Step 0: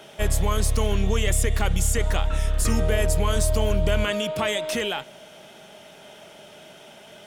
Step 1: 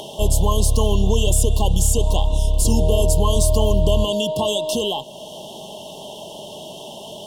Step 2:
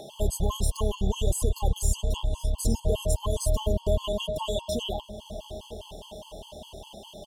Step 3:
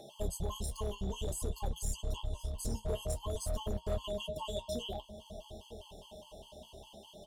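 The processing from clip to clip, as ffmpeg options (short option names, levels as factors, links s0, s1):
-filter_complex "[0:a]afftfilt=real='re*(1-between(b*sr/4096,1100,2700))':imag='im*(1-between(b*sr/4096,1100,2700))':win_size=4096:overlap=0.75,asplit=2[s0][s1];[s1]acompressor=mode=upward:threshold=0.0562:ratio=2.5,volume=0.794[s2];[s0][s2]amix=inputs=2:normalize=0"
-filter_complex "[0:a]asplit=2[s0][s1];[s1]adelay=931,lowpass=f=1100:p=1,volume=0.251,asplit=2[s2][s3];[s3]adelay=931,lowpass=f=1100:p=1,volume=0.49,asplit=2[s4][s5];[s5]adelay=931,lowpass=f=1100:p=1,volume=0.49,asplit=2[s6][s7];[s7]adelay=931,lowpass=f=1100:p=1,volume=0.49,asplit=2[s8][s9];[s9]adelay=931,lowpass=f=1100:p=1,volume=0.49[s10];[s0][s2][s4][s6][s8][s10]amix=inputs=6:normalize=0,afftfilt=real='re*gt(sin(2*PI*4.9*pts/sr)*(1-2*mod(floor(b*sr/1024/850),2)),0)':imag='im*gt(sin(2*PI*4.9*pts/sr)*(1-2*mod(floor(b*sr/1024/850),2)),0)':win_size=1024:overlap=0.75,volume=0.447"
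-af "volume=9.44,asoftclip=hard,volume=0.106,flanger=delay=8.7:depth=7.5:regen=-45:speed=0.53:shape=sinusoidal,volume=0.562"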